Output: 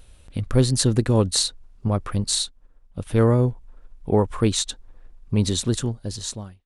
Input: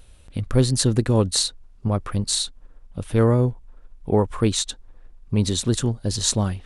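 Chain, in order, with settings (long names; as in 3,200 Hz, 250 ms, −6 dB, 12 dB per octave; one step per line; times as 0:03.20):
fade-out on the ending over 1.11 s
0:02.44–0:03.07: expander for the loud parts 1.5 to 1, over −41 dBFS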